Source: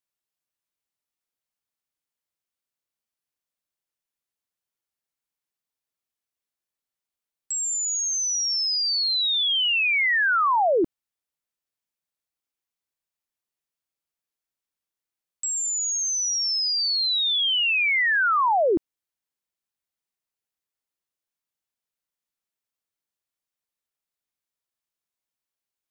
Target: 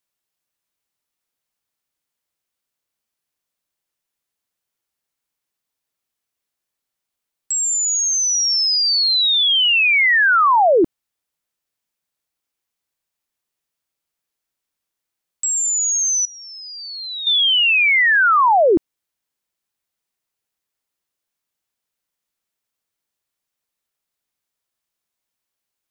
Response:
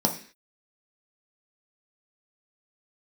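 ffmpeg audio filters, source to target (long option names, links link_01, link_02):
-filter_complex "[0:a]asettb=1/sr,asplit=3[link_01][link_02][link_03];[link_01]atrim=end=16.254[link_04];[link_02]atrim=start=16.25:end=17.27,asetpts=PTS-STARTPTS,afade=type=in:duration=0.004:curve=qsin,afade=type=out:start_time=1.016:duration=0.004:curve=qsin,lowpass=frequency=1800:width_type=q:width=2.9[link_05];[link_03]atrim=start=17.266[link_06];[link_04][link_05]acrossfade=duration=0.004:curve1=hsin:curve2=qsin[link_07];[link_07][link_06]acrossfade=duration=0.004:curve1=qsin:curve2=hsin,volume=7dB"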